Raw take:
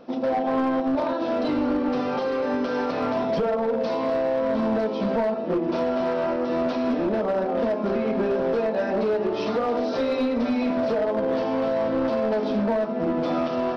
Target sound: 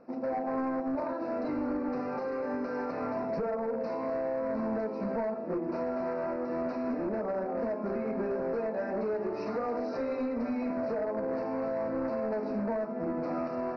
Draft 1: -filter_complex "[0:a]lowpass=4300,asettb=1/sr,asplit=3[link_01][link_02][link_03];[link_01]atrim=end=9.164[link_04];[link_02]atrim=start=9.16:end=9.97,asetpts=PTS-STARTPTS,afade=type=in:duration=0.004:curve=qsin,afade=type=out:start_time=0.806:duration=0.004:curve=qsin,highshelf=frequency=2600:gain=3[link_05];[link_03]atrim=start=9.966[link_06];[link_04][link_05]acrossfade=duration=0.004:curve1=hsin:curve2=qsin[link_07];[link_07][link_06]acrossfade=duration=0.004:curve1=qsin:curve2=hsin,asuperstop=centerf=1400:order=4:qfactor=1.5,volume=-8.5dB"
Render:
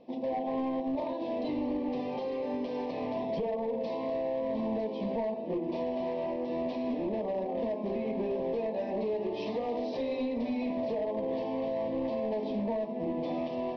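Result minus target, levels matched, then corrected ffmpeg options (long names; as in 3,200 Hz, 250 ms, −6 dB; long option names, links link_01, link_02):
4,000 Hz band +10.5 dB
-filter_complex "[0:a]lowpass=4300,asettb=1/sr,asplit=3[link_01][link_02][link_03];[link_01]atrim=end=9.164[link_04];[link_02]atrim=start=9.16:end=9.97,asetpts=PTS-STARTPTS,afade=type=in:duration=0.004:curve=qsin,afade=type=out:start_time=0.806:duration=0.004:curve=qsin,highshelf=frequency=2600:gain=3[link_05];[link_03]atrim=start=9.966[link_06];[link_04][link_05]acrossfade=duration=0.004:curve1=hsin:curve2=qsin[link_07];[link_07][link_06]acrossfade=duration=0.004:curve1=qsin:curve2=hsin,asuperstop=centerf=3300:order=4:qfactor=1.5,volume=-8.5dB"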